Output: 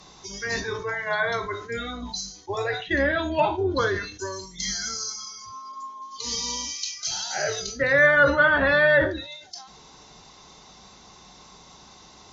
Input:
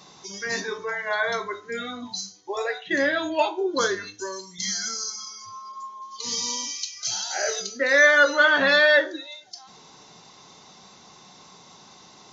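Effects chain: octaver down 2 oct, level -3 dB; treble ducked by the level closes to 2100 Hz, closed at -17 dBFS; sustainer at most 93 dB/s

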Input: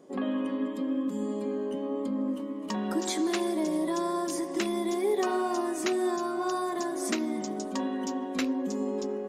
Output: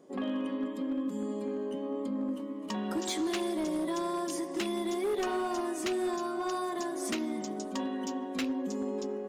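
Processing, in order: dynamic EQ 3000 Hz, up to +5 dB, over -52 dBFS, Q 2.4; hard clip -23.5 dBFS, distortion -20 dB; gain -3 dB

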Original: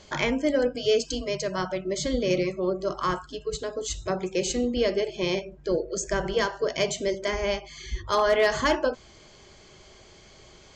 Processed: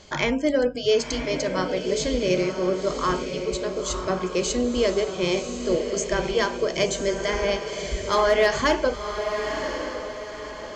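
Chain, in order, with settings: diffused feedback echo 1.033 s, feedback 42%, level -7 dB; gain +2 dB

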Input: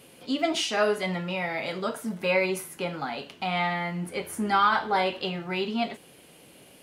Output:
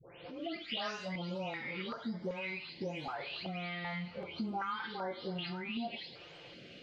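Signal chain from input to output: spectral delay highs late, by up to 0.408 s; compressor 4:1, threshold -40 dBFS, peak gain reduction 18.5 dB; inverse Chebyshev low-pass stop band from 9200 Hz, stop band 40 dB; on a send: thin delay 0.513 s, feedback 62%, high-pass 1900 Hz, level -16 dB; on the sum: stepped notch 2.6 Hz 230–2600 Hz; gain +3 dB

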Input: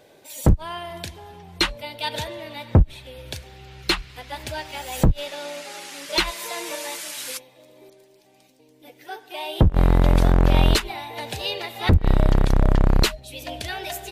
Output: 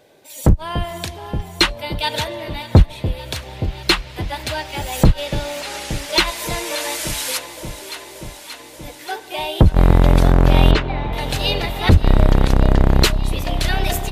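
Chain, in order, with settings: echo with dull and thin repeats by turns 0.29 s, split 810 Hz, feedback 85%, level -12.5 dB; AGC gain up to 8 dB; 10.71–11.13 LPF 2700 Hz 12 dB/oct

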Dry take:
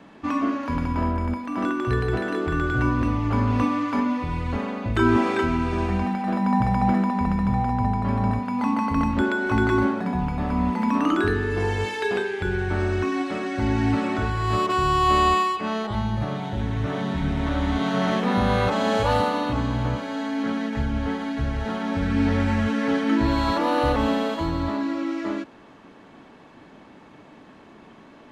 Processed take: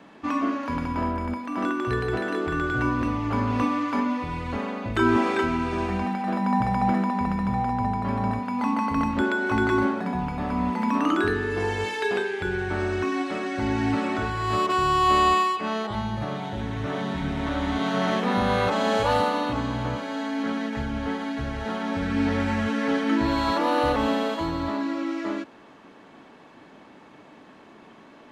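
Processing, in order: low shelf 140 Hz -9 dB

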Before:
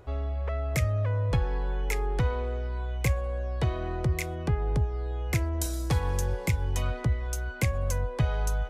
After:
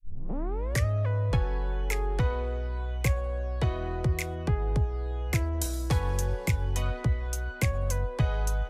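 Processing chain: tape start at the beginning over 0.85 s

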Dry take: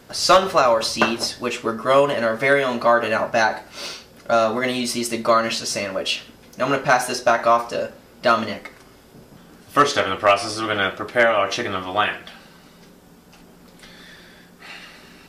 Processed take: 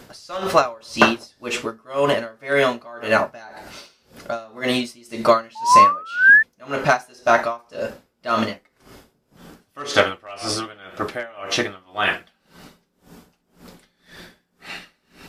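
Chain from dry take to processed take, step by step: painted sound rise, 5.55–6.43, 860–1800 Hz -13 dBFS; dB-linear tremolo 1.9 Hz, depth 29 dB; gain +5 dB

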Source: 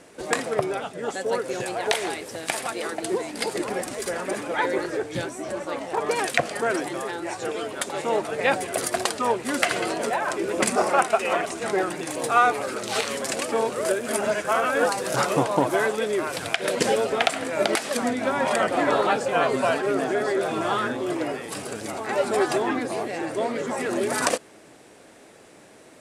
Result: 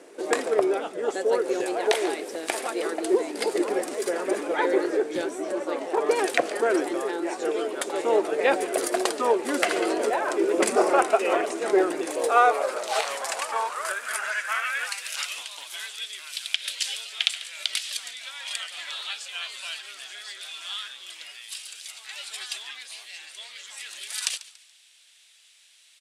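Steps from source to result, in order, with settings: frequency-shifting echo 0.142 s, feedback 38%, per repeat -90 Hz, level -18 dB; high-pass sweep 360 Hz -> 3300 Hz, 11.92–15.51; gain -2.5 dB

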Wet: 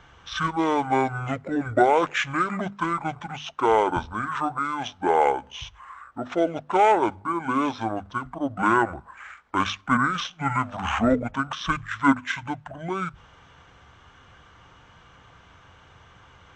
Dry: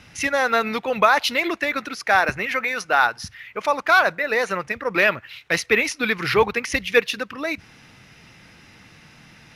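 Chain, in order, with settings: speed mistake 78 rpm record played at 45 rpm; notches 50/100/150/200/250 Hz; gain -3 dB

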